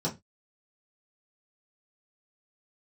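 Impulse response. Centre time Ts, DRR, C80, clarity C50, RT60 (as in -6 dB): 15 ms, -6.0 dB, 24.0 dB, 15.5 dB, 0.20 s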